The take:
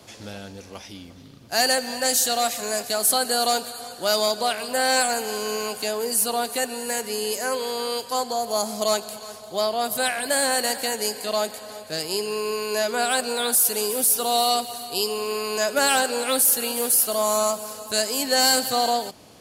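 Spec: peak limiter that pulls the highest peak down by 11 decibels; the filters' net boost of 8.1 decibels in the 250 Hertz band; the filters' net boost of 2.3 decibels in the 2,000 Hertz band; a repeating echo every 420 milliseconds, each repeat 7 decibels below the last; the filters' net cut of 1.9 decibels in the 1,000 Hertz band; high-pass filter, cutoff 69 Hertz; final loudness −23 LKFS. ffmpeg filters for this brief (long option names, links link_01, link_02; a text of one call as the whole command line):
ffmpeg -i in.wav -af "highpass=69,equalizer=frequency=250:width_type=o:gain=9,equalizer=frequency=1000:width_type=o:gain=-5,equalizer=frequency=2000:width_type=o:gain=5,alimiter=limit=-18.5dB:level=0:latency=1,aecho=1:1:420|840|1260|1680|2100:0.447|0.201|0.0905|0.0407|0.0183,volume=4dB" out.wav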